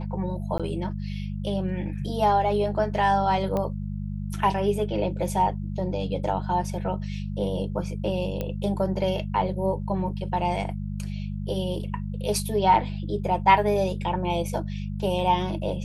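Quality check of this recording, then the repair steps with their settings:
hum 50 Hz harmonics 4 -31 dBFS
0.58–0.6 gap 16 ms
3.57 pop -16 dBFS
8.41 pop -16 dBFS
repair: de-click; de-hum 50 Hz, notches 4; interpolate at 0.58, 16 ms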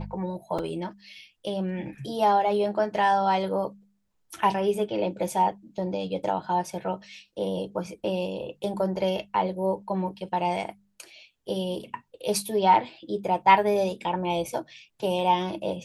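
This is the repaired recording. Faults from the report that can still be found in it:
none

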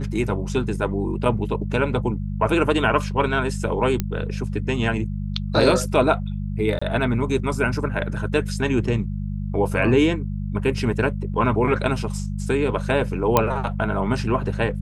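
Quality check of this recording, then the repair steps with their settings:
hum 50 Hz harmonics 4 -27 dBFS
4 pop -9 dBFS
6.79–6.82 gap 25 ms
13.37 pop -2 dBFS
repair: de-click; de-hum 50 Hz, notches 4; interpolate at 6.79, 25 ms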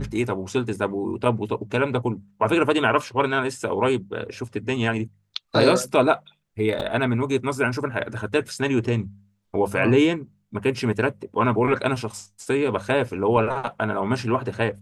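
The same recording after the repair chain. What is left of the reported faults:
none

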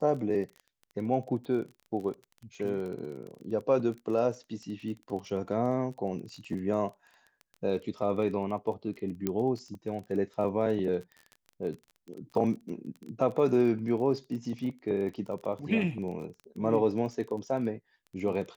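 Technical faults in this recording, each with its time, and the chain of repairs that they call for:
crackle 24/s -38 dBFS
9.27 pop -16 dBFS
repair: de-click

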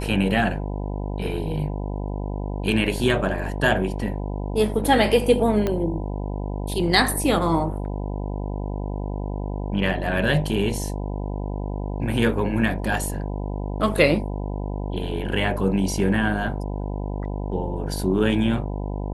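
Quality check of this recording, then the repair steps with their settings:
buzz 50 Hz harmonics 20 -28 dBFS
5.67 pop -11 dBFS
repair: de-click; de-hum 50 Hz, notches 20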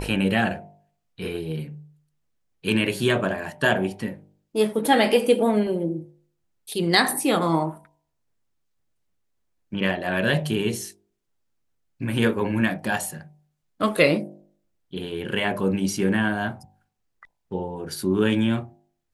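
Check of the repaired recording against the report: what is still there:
5.67 pop

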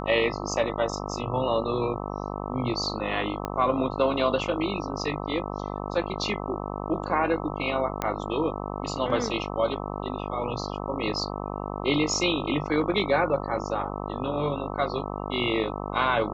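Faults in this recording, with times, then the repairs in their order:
buzz 50 Hz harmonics 26 -33 dBFS
3.45 pop -15 dBFS
8.02 pop -12 dBFS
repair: de-click; de-hum 50 Hz, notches 26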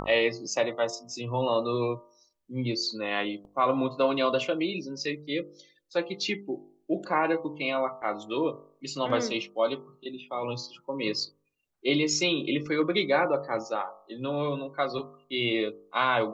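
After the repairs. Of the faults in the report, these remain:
3.45 pop

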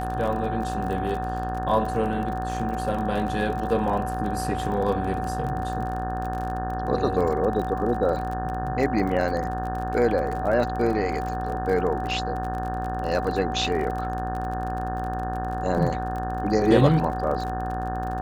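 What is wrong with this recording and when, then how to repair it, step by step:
buzz 60 Hz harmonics 30 -31 dBFS
crackle 35/s -30 dBFS
tone 750 Hz -29 dBFS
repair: de-click; de-hum 60 Hz, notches 30; notch 750 Hz, Q 30

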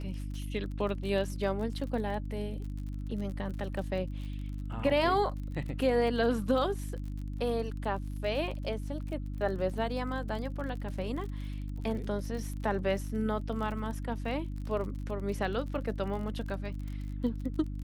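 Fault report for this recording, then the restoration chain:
crackle 41/s -39 dBFS
hum 50 Hz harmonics 6 -37 dBFS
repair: de-click; de-hum 50 Hz, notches 6

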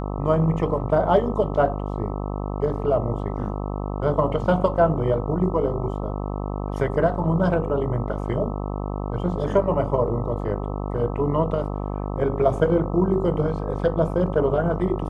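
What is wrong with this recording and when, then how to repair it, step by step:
buzz 50 Hz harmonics 26 -28 dBFS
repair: de-hum 50 Hz, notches 26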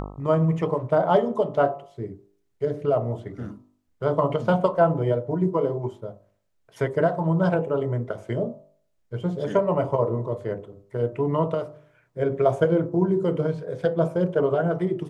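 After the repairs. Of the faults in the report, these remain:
none

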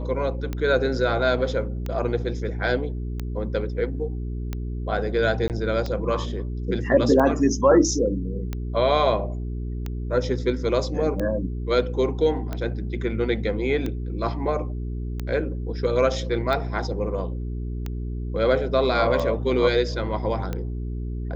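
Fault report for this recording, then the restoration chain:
hum 60 Hz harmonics 7 -29 dBFS
tick 45 rpm -16 dBFS
5.48–5.5 gap 18 ms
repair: de-click; de-hum 60 Hz, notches 7; interpolate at 5.48, 18 ms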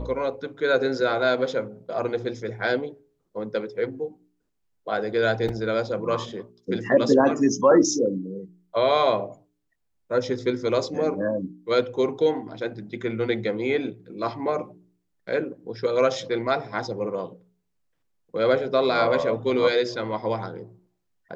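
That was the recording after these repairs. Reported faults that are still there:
none

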